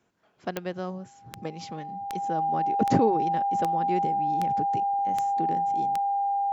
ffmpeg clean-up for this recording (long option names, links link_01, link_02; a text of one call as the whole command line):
ffmpeg -i in.wav -af "adeclick=threshold=4,bandreject=frequency=800:width=30" out.wav